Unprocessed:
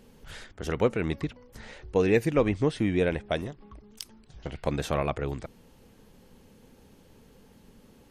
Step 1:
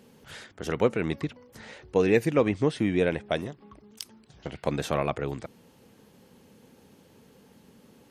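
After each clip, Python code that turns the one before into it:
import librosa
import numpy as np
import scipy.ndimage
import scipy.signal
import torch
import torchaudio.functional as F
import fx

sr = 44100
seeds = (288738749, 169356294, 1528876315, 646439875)

y = scipy.signal.sosfilt(scipy.signal.butter(2, 110.0, 'highpass', fs=sr, output='sos'), x)
y = y * 10.0 ** (1.0 / 20.0)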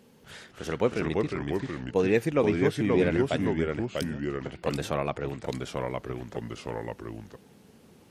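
y = fx.echo_pitch(x, sr, ms=240, semitones=-2, count=2, db_per_echo=-3.0)
y = y * 10.0 ** (-2.0 / 20.0)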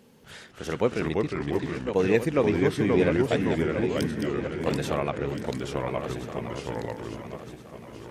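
y = fx.reverse_delay_fb(x, sr, ms=686, feedback_pct=57, wet_db=-7.5)
y = y * 10.0 ** (1.0 / 20.0)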